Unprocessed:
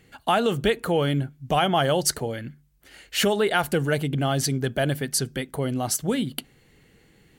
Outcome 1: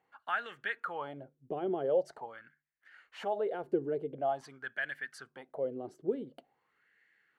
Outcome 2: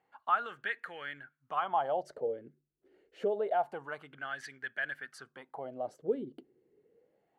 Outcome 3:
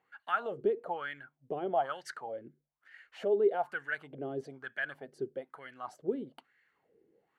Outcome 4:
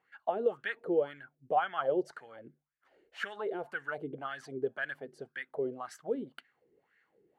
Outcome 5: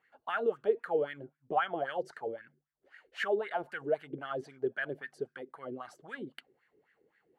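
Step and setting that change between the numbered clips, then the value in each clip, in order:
LFO wah, speed: 0.46, 0.27, 1.1, 1.9, 3.8 Hertz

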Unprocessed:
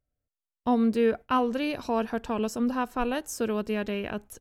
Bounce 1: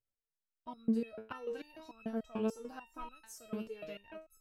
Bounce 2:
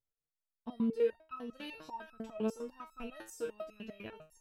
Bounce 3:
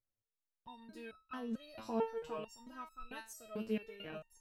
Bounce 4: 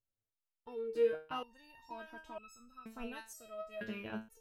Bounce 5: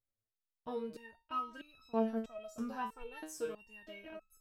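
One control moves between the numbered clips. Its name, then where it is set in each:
step-sequenced resonator, speed: 6.8, 10, 4.5, 2.1, 3.1 Hertz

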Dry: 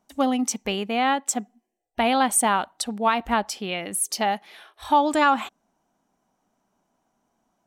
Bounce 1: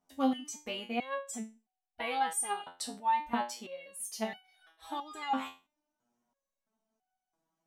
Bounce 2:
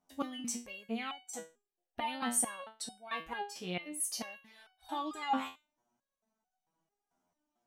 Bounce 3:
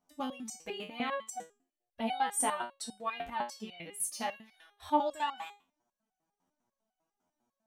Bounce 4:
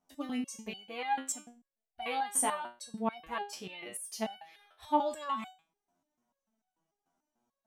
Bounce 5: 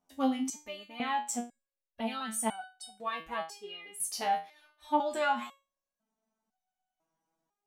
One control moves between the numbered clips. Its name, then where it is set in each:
step-sequenced resonator, speed: 3, 4.5, 10, 6.8, 2 Hertz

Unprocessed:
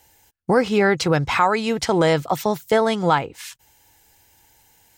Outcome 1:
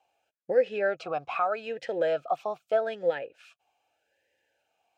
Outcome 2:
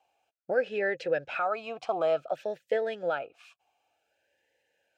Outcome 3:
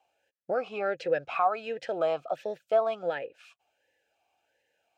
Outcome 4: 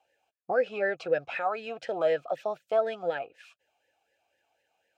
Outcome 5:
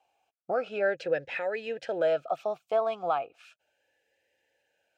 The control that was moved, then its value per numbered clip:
formant filter swept between two vowels, speed: 0.81, 0.55, 1.4, 4, 0.35 Hertz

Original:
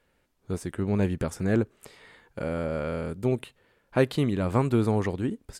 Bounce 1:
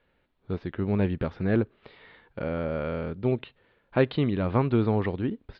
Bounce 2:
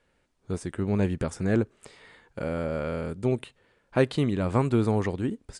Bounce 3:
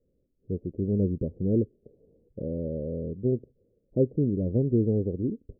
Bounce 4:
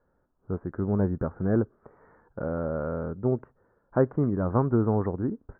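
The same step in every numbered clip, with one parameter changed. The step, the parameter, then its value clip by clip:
Butterworth low-pass, frequency: 4,100, 10,000, 530, 1,500 Hertz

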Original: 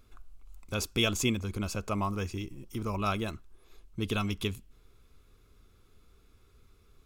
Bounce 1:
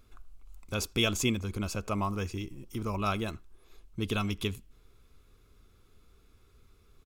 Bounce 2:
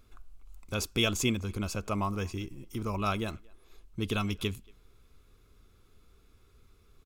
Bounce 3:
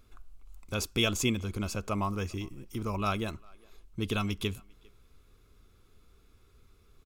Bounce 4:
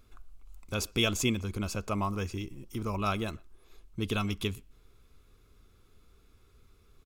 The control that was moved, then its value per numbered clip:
far-end echo of a speakerphone, delay time: 80, 230, 400, 120 milliseconds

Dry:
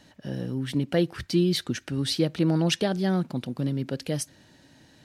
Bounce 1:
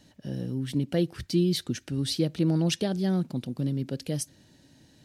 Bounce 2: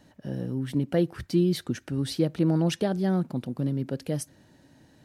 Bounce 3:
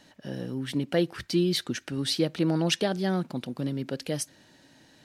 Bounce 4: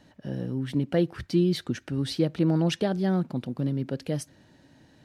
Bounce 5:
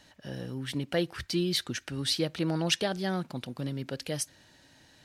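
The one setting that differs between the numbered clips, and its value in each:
parametric band, centre frequency: 1,300, 3,700, 66, 16,000, 210 Hertz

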